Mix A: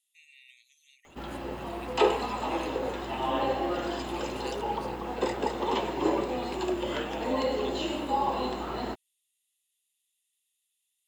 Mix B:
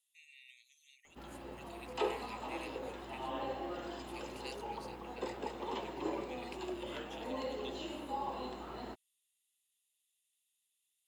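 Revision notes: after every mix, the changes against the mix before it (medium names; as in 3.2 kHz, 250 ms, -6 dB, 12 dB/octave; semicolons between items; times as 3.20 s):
speech -3.0 dB; background -11.5 dB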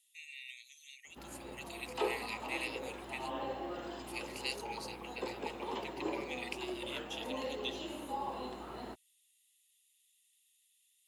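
speech +10.0 dB; master: add high-pass 47 Hz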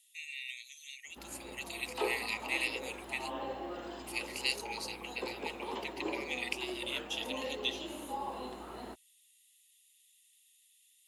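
speech +6.0 dB; background: add peaking EQ 140 Hz -9 dB 0.26 oct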